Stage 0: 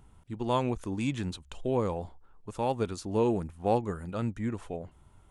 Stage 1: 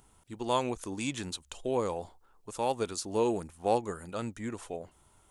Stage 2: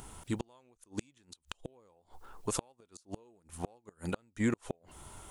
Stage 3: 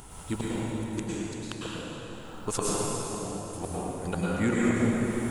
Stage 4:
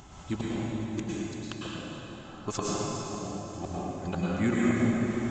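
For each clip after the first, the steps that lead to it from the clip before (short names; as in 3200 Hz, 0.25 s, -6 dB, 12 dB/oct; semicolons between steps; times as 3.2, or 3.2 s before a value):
tone controls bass -9 dB, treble +9 dB
compressor 1.5:1, threshold -48 dBFS, peak gain reduction 9.5 dB; flipped gate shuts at -33 dBFS, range -37 dB; gain +13 dB
plate-style reverb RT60 4.1 s, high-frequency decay 0.7×, pre-delay 90 ms, DRR -8 dB; gain +2 dB
notch comb 470 Hz; downsampling 16000 Hz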